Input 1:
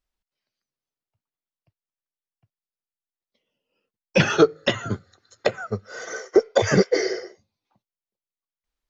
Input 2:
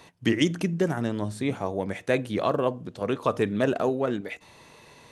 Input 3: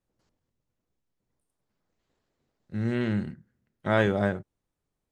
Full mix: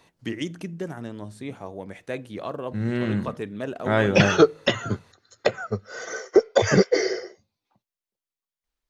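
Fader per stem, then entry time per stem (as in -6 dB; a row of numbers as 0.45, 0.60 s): 0.0, -7.5, +2.0 dB; 0.00, 0.00, 0.00 s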